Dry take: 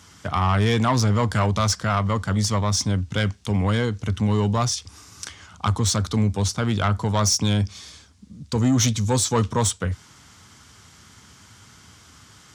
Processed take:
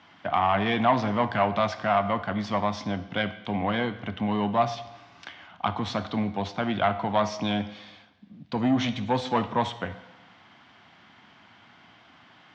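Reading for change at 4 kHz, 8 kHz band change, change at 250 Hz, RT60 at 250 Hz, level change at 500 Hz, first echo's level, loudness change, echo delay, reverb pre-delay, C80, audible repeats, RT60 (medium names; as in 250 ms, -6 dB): -7.5 dB, -24.5 dB, -3.5 dB, 1.0 s, -0.5 dB, no echo, -5.0 dB, no echo, 16 ms, 15.5 dB, no echo, 0.95 s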